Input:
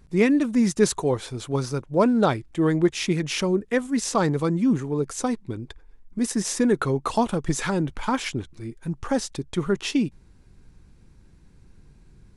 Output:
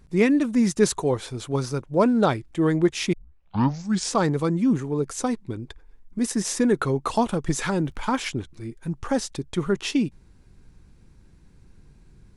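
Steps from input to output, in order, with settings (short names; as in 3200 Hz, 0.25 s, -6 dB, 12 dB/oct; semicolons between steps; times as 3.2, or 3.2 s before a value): 3.13 tape start 1.00 s; 7.46–8.2 crackle 46/s -49 dBFS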